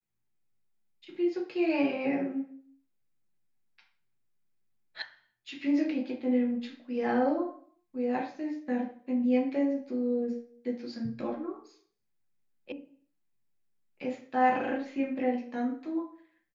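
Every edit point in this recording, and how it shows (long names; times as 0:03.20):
0:05.02: cut off before it has died away
0:12.72: cut off before it has died away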